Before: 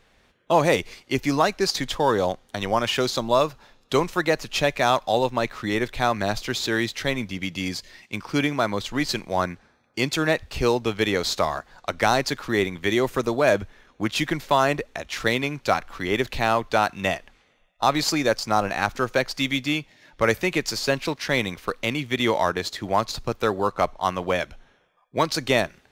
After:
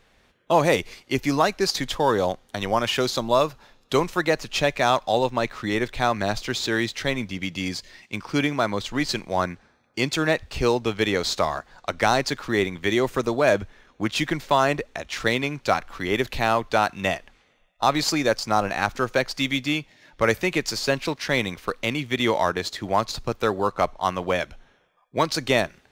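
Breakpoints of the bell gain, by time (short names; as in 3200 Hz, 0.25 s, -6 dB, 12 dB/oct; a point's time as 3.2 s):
bell 12000 Hz 0.25 oct
3.98 s +1.5 dB
4.52 s -7.5 dB
15.58 s -7.5 dB
16.29 s +3.5 dB
16.64 s -3 dB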